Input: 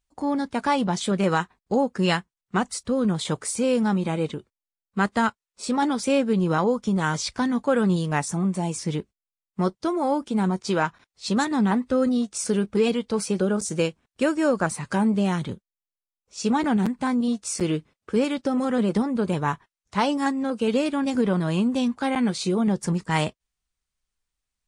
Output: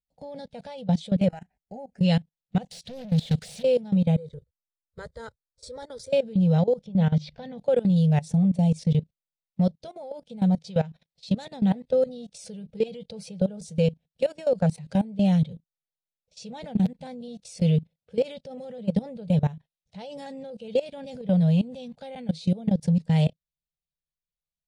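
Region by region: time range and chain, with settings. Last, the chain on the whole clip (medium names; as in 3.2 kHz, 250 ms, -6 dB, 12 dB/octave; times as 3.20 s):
1.28–2.01 s: compression 20:1, threshold -23 dBFS + static phaser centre 740 Hz, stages 8
2.71–3.63 s: amplifier tone stack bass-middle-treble 6-0-2 + overdrive pedal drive 42 dB, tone 6 kHz, clips at -19.5 dBFS + loudspeaker Doppler distortion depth 0.28 ms
4.16–6.13 s: resonant low shelf 120 Hz +12 dB, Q 1.5 + static phaser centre 740 Hz, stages 6
6.86–7.58 s: low-pass 3.4 kHz + hum notches 50/100/150/200/250/300 Hz
whole clip: FFT filter 110 Hz 0 dB, 160 Hz +13 dB, 330 Hz -21 dB, 490 Hz +6 dB, 770 Hz -1 dB, 1.1 kHz -20 dB, 1.7 kHz -9 dB, 3.8 kHz +6 dB, 7.3 kHz -3 dB, 11 kHz 0 dB; level held to a coarse grid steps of 19 dB; treble shelf 4.2 kHz -9 dB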